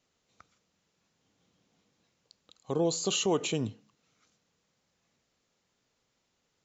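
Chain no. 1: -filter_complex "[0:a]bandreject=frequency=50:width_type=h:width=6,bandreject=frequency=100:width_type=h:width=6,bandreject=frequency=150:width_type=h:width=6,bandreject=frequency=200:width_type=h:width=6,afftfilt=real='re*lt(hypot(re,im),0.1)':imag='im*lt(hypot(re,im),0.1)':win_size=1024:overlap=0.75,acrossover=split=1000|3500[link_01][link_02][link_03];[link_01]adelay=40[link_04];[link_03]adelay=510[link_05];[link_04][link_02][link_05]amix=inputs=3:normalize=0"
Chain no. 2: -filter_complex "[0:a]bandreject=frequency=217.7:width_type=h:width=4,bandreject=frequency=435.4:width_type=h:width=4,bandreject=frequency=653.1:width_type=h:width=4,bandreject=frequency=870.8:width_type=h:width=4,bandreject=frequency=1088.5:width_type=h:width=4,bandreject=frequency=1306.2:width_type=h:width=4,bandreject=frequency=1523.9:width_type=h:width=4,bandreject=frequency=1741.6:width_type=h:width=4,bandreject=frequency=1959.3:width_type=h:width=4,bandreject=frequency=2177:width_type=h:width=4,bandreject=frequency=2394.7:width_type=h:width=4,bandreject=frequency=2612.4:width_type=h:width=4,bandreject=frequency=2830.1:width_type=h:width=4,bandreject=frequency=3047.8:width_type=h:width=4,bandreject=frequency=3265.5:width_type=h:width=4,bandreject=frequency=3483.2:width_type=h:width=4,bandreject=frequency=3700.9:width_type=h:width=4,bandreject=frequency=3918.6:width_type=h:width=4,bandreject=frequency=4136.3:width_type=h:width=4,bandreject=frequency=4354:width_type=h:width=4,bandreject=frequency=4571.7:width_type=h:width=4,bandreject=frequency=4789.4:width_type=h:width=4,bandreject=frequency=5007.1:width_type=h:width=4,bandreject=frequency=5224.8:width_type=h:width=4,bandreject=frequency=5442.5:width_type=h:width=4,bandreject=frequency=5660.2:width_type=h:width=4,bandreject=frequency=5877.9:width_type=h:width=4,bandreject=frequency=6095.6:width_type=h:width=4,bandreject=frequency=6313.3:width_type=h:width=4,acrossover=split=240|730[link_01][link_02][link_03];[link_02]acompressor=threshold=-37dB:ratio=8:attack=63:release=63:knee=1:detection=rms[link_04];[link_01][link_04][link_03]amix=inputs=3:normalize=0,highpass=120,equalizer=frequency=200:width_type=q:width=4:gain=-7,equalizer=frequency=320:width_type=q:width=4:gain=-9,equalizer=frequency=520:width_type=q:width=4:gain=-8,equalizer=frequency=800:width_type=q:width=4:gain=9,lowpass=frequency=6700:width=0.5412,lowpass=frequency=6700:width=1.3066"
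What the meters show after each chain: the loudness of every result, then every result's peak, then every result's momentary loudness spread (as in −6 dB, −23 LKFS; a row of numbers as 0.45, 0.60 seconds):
−38.0, −34.0 LKFS; −23.0, −18.0 dBFS; 14, 10 LU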